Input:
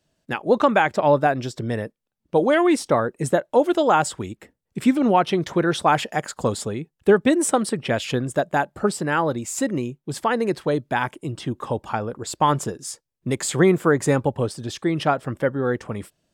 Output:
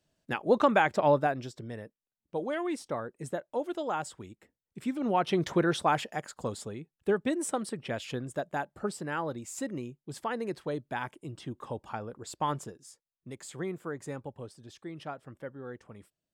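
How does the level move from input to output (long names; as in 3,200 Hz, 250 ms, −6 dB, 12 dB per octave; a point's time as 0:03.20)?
0:01.07 −6 dB
0:01.70 −15 dB
0:04.88 −15 dB
0:05.45 −4 dB
0:06.30 −12 dB
0:12.51 −12 dB
0:12.91 −19.5 dB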